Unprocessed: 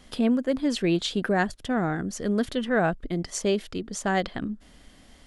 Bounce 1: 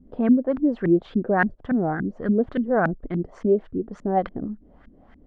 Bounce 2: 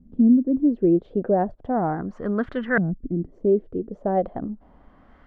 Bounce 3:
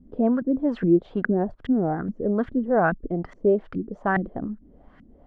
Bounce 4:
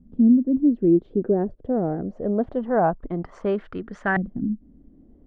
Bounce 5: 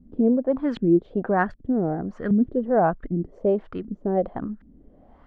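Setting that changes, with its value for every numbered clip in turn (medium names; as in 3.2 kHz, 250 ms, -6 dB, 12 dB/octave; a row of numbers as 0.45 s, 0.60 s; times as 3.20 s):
LFO low-pass, rate: 3.5 Hz, 0.36 Hz, 2.4 Hz, 0.24 Hz, 1.3 Hz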